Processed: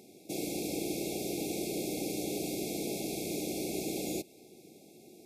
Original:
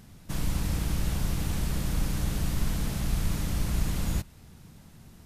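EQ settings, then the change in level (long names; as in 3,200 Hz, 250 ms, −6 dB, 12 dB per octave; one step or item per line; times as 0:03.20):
high-pass with resonance 360 Hz, resonance Q 3.8
linear-phase brick-wall band-stop 830–2,100 Hz
Butterworth band-reject 3,000 Hz, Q 6.3
0.0 dB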